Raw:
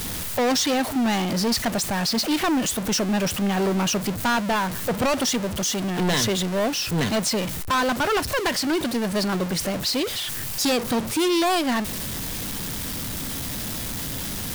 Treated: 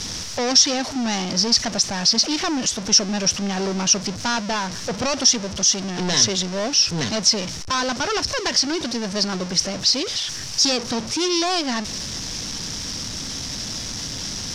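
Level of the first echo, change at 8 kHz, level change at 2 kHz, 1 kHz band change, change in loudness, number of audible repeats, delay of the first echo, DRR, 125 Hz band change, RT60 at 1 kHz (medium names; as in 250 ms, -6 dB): no echo, +7.5 dB, -1.0 dB, -2.0 dB, +3.0 dB, no echo, no echo, no reverb, -2.0 dB, no reverb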